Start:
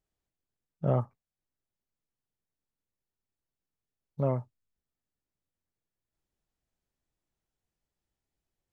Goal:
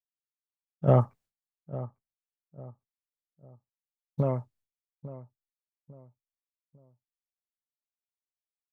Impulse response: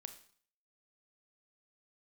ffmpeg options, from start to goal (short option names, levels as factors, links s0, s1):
-filter_complex "[0:a]agate=range=0.0224:threshold=0.00141:ratio=3:detection=peak,asplit=3[s0][s1][s2];[s0]afade=t=out:st=0.87:d=0.02[s3];[s1]acontrast=79,afade=t=in:st=0.87:d=0.02,afade=t=out:st=4.21:d=0.02[s4];[s2]afade=t=in:st=4.21:d=0.02[s5];[s3][s4][s5]amix=inputs=3:normalize=0,asplit=2[s6][s7];[s7]adelay=850,lowpass=f=1200:p=1,volume=0.178,asplit=2[s8][s9];[s9]adelay=850,lowpass=f=1200:p=1,volume=0.37,asplit=2[s10][s11];[s11]adelay=850,lowpass=f=1200:p=1,volume=0.37[s12];[s6][s8][s10][s12]amix=inputs=4:normalize=0"